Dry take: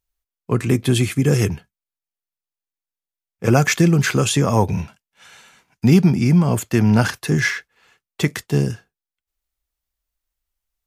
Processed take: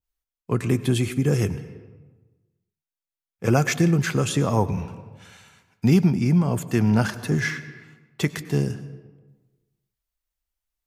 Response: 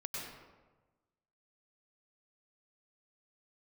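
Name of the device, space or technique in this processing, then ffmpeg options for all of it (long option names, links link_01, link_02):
compressed reverb return: -filter_complex "[0:a]asplit=2[link_01][link_02];[1:a]atrim=start_sample=2205[link_03];[link_02][link_03]afir=irnorm=-1:irlink=0,acompressor=threshold=-14dB:ratio=6,volume=-11dB[link_04];[link_01][link_04]amix=inputs=2:normalize=0,adynamicequalizer=threshold=0.0251:dfrequency=1500:dqfactor=0.7:tfrequency=1500:tqfactor=0.7:attack=5:release=100:ratio=0.375:range=2:mode=cutabove:tftype=highshelf,volume=-5.5dB"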